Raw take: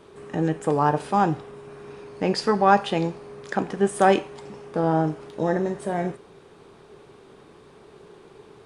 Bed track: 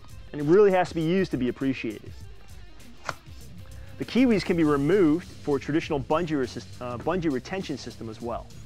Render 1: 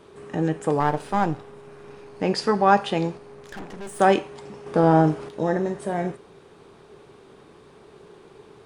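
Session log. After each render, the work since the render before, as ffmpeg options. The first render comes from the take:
-filter_complex "[0:a]asettb=1/sr,asplit=3[s0][s1][s2];[s0]atrim=end=0.804[s3];[s1]atrim=start=0.8:end=2.2,asetpts=PTS-STARTPTS,afade=t=in:d=0.004:c=qsin,afade=t=out:st=1.396:d=0.004:c=qsin,aeval=exprs='if(lt(val(0),0),0.447*val(0),val(0))':c=same[s4];[s2]atrim=start=2.196[s5];[s3][s4]acrossfade=d=0.004:c1=hsin:c2=qsin[s6];[s6][s5]acrossfade=d=0.004:c1=qsin:c2=hsin,asettb=1/sr,asplit=3[s7][s8][s9];[s7]atrim=end=3.174[s10];[s8]atrim=start=3.17:end=4,asetpts=PTS-STARTPTS,afade=t=in:d=0.004:c=qsin,afade=t=out:st=0.826:d=0.004:c=qsin,aeval=exprs='(tanh(50.1*val(0)+0.65)-tanh(0.65))/50.1':c=same[s11];[s9]atrim=start=3.996[s12];[s10][s11]acrossfade=d=0.004:c1=hsin:c2=qsin[s13];[s13][s12]acrossfade=d=0.004:c1=qsin:c2=hsin,asettb=1/sr,asplit=3[s14][s15][s16];[s14]atrim=end=4.664[s17];[s15]atrim=start=4.66:end=5.29,asetpts=PTS-STARTPTS,afade=t=in:d=0.004:c=qsin,afade=t=out:st=0.626:d=0.004:c=qsin,acontrast=35[s18];[s16]atrim=start=5.286[s19];[s17][s18]acrossfade=d=0.004:c1=hsin:c2=qsin[s20];[s20][s19]acrossfade=d=0.004:c1=qsin:c2=hsin"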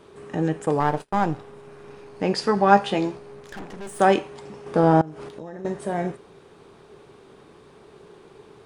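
-filter_complex "[0:a]asplit=3[s0][s1][s2];[s0]afade=t=out:st=0.65:d=0.02[s3];[s1]agate=range=0.0224:threshold=0.0141:ratio=16:release=100:detection=peak,afade=t=in:st=0.65:d=0.02,afade=t=out:st=1.31:d=0.02[s4];[s2]afade=t=in:st=1.31:d=0.02[s5];[s3][s4][s5]amix=inputs=3:normalize=0,asettb=1/sr,asplit=3[s6][s7][s8];[s6]atrim=end=2.554[s9];[s7]atrim=start=2.55:end=3.4,asetpts=PTS-STARTPTS,afade=t=in:d=0.004:c=qsin,afade=t=out:st=0.846:d=0.004:c=qsin,asplit=2[s10][s11];[s11]adelay=15,volume=0.447[s12];[s10][s12]amix=inputs=2:normalize=0,atrim=end_sample=37485[s13];[s8]atrim=start=3.396[s14];[s9][s13]acrossfade=d=0.004:c1=hsin:c2=qsin[s15];[s15][s14]acrossfade=d=0.004:c1=qsin:c2=hsin,asettb=1/sr,asplit=3[s16][s17][s18];[s16]atrim=end=5.014[s19];[s17]atrim=start=5.01:end=5.65,asetpts=PTS-STARTPTS,afade=t=in:d=0.004:c=qsin,afade=t=out:st=0.636:d=0.004:c=qsin,acompressor=threshold=0.0251:ratio=16:attack=3.2:release=140:knee=1:detection=peak[s20];[s18]atrim=start=5.646[s21];[s19][s20]acrossfade=d=0.004:c1=hsin:c2=qsin[s22];[s22][s21]acrossfade=d=0.004:c1=qsin:c2=hsin"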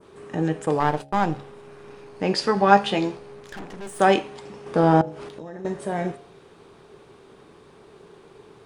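-af "bandreject=f=70.15:t=h:w=4,bandreject=f=140.3:t=h:w=4,bandreject=f=210.45:t=h:w=4,bandreject=f=280.6:t=h:w=4,bandreject=f=350.75:t=h:w=4,bandreject=f=420.9:t=h:w=4,bandreject=f=491.05:t=h:w=4,bandreject=f=561.2:t=h:w=4,bandreject=f=631.35:t=h:w=4,bandreject=f=701.5:t=h:w=4,bandreject=f=771.65:t=h:w=4,bandreject=f=841.8:t=h:w=4,adynamicequalizer=threshold=0.0126:dfrequency=3400:dqfactor=0.79:tfrequency=3400:tqfactor=0.79:attack=5:release=100:ratio=0.375:range=2:mode=boostabove:tftype=bell"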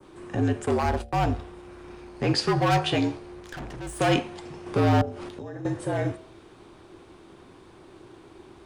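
-filter_complex "[0:a]acrossover=split=270|2300[s0][s1][s2];[s1]volume=11.2,asoftclip=hard,volume=0.0891[s3];[s0][s3][s2]amix=inputs=3:normalize=0,afreqshift=-55"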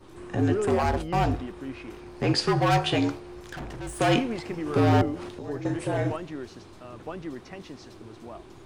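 -filter_complex "[1:a]volume=0.299[s0];[0:a][s0]amix=inputs=2:normalize=0"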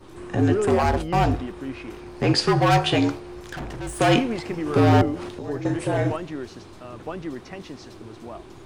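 -af "volume=1.58"

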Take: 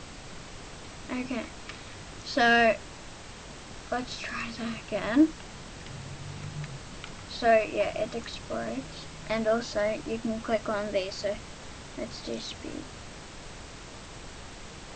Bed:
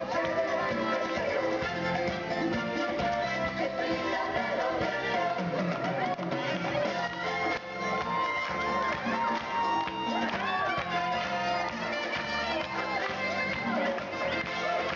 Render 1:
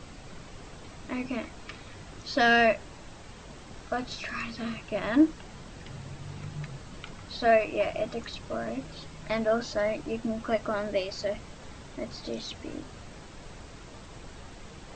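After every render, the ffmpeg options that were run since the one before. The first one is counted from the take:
-af "afftdn=nr=6:nf=-45"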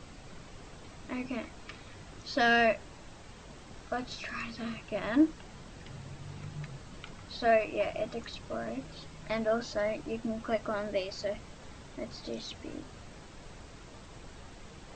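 -af "volume=0.668"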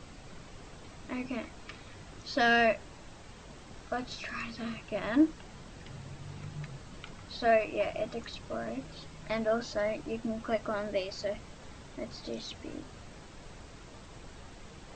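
-af anull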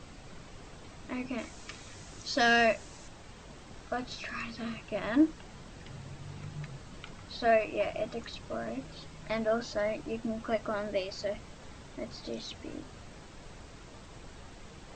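-filter_complex "[0:a]asettb=1/sr,asplit=3[s0][s1][s2];[s0]atrim=end=1.384[s3];[s1]atrim=start=1.38:end=3.08,asetpts=PTS-STARTPTS,afade=t=in:d=0.004:c=qsin,afade=t=out:st=1.696:d=0.004:c=qsin,equalizer=f=6800:w=1.1:g=9[s4];[s2]atrim=start=3.076[s5];[s3][s4]acrossfade=d=0.004:c1=hsin:c2=qsin[s6];[s6][s5]acrossfade=d=0.004:c1=qsin:c2=hsin"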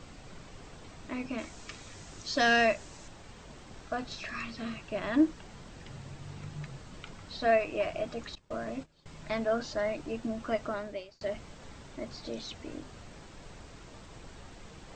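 -filter_complex "[0:a]asettb=1/sr,asplit=3[s0][s1][s2];[s0]atrim=end=8.354[s3];[s1]atrim=start=8.35:end=9.06,asetpts=PTS-STARTPTS,afade=t=in:d=0.004:c=qsin,afade=t=out:st=0.706:d=0.004:c=qsin,agate=range=0.1:threshold=0.00708:ratio=16:release=100:detection=peak[s4];[s2]atrim=start=9.056[s5];[s3][s4]acrossfade=d=0.004:c1=hsin:c2=qsin[s6];[s6][s5]acrossfade=d=0.004:c1=qsin:c2=hsin,asplit=2[s7][s8];[s7]atrim=end=11.21,asetpts=PTS-STARTPTS,afade=t=out:st=10.65:d=0.56[s9];[s8]atrim=start=11.21,asetpts=PTS-STARTPTS,afade=t=in:d=0.004:c=hsin[s10];[s9][s10]concat=n=2:v=0:a=1"

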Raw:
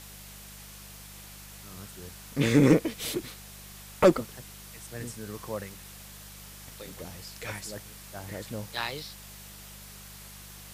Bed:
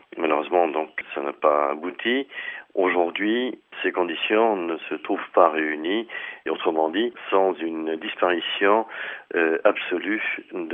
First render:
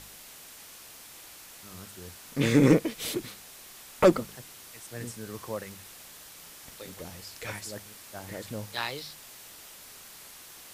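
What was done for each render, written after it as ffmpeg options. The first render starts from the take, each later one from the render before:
-af "bandreject=f=50:t=h:w=4,bandreject=f=100:t=h:w=4,bandreject=f=150:t=h:w=4,bandreject=f=200:t=h:w=4"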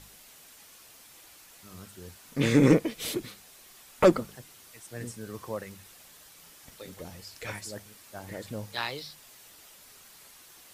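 -af "afftdn=nr=6:nf=-49"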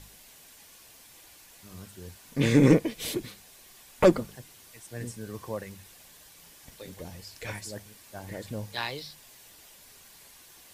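-af "lowshelf=f=120:g=5,bandreject=f=1300:w=9.2"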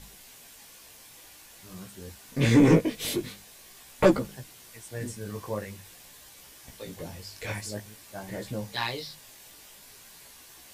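-filter_complex "[0:a]asplit=2[s0][s1];[s1]aeval=exprs='0.376*sin(PI/2*2*val(0)/0.376)':c=same,volume=0.282[s2];[s0][s2]amix=inputs=2:normalize=0,flanger=delay=15:depth=5.3:speed=0.47"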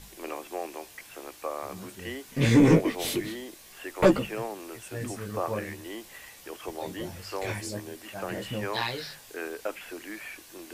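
-filter_complex "[1:a]volume=0.168[s0];[0:a][s0]amix=inputs=2:normalize=0"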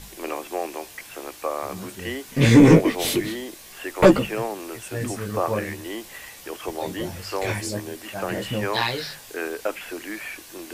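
-af "volume=2.11,alimiter=limit=0.708:level=0:latency=1"

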